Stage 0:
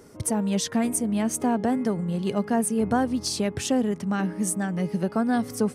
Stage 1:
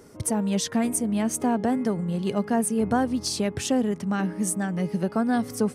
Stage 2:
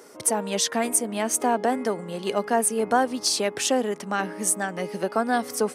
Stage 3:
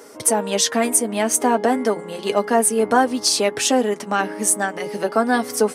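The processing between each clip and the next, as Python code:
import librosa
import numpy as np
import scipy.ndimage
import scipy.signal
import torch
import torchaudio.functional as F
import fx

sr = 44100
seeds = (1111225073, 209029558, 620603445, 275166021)

y1 = x
y2 = scipy.signal.sosfilt(scipy.signal.butter(2, 430.0, 'highpass', fs=sr, output='sos'), y1)
y2 = y2 * librosa.db_to_amplitude(5.5)
y3 = fx.notch_comb(y2, sr, f0_hz=180.0)
y3 = y3 * librosa.db_to_amplitude(6.5)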